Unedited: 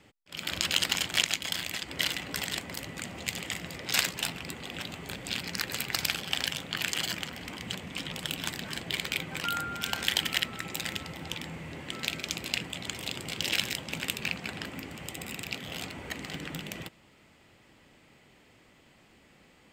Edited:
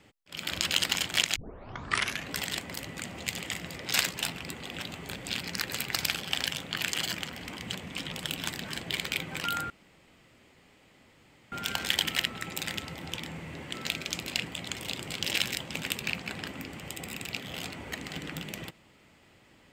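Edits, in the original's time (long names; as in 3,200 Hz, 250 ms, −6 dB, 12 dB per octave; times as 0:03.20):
0:01.36: tape start 0.94 s
0:09.70: splice in room tone 1.82 s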